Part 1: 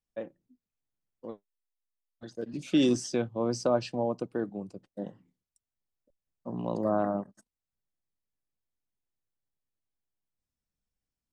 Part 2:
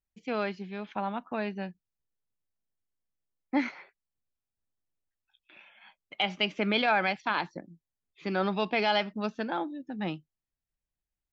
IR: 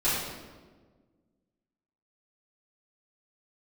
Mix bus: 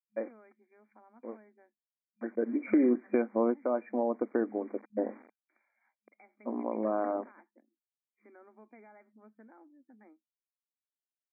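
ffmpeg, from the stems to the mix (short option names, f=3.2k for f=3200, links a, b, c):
-filter_complex "[0:a]dynaudnorm=f=450:g=9:m=9.5dB,acrusher=bits=8:mix=0:aa=0.000001,volume=2.5dB[a];[1:a]acrossover=split=280[b][c];[c]acompressor=threshold=-45dB:ratio=2[d];[b][d]amix=inputs=2:normalize=0,volume=-18.5dB,asplit=2[e][f];[f]apad=whole_len=499413[g];[a][g]sidechaincompress=threshold=-58dB:ratio=6:attack=16:release=1180[h];[h][e]amix=inputs=2:normalize=0,afftfilt=real='re*between(b*sr/4096,210,2400)':imag='im*between(b*sr/4096,210,2400)':win_size=4096:overlap=0.75,acompressor=threshold=-28dB:ratio=2.5"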